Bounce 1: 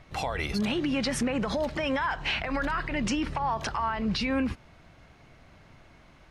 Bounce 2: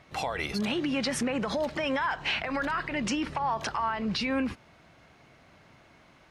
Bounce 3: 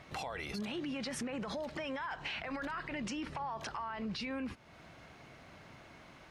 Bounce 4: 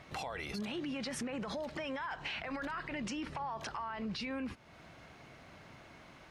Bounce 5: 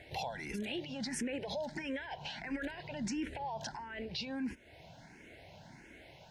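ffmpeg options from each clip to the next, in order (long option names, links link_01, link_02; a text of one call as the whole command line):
ffmpeg -i in.wav -af "highpass=frequency=170:poles=1" out.wav
ffmpeg -i in.wav -af "alimiter=limit=-24dB:level=0:latency=1:release=16,acompressor=threshold=-47dB:ratio=2,volume=2dB" out.wav
ffmpeg -i in.wav -af anull out.wav
ffmpeg -i in.wav -filter_complex "[0:a]asuperstop=centerf=1200:order=4:qfactor=2.2,asplit=2[link_01][link_02];[link_02]afreqshift=1.5[link_03];[link_01][link_03]amix=inputs=2:normalize=1,volume=3.5dB" out.wav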